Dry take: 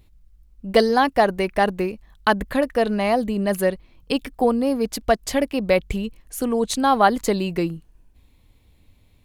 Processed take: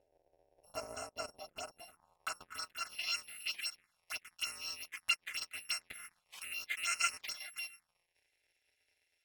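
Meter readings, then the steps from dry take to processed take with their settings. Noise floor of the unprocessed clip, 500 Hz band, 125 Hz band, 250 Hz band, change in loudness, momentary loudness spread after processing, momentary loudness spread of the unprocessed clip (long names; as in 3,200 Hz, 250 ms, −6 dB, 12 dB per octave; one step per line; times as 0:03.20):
−57 dBFS, −32.5 dB, below −35 dB, below −40 dB, −18.0 dB, 13 LU, 10 LU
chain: samples in bit-reversed order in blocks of 256 samples
phaser swept by the level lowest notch 190 Hz, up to 3,500 Hz, full sweep at −14.5 dBFS
band-pass filter sweep 660 Hz → 2,100 Hz, 0:01.59–0:03.15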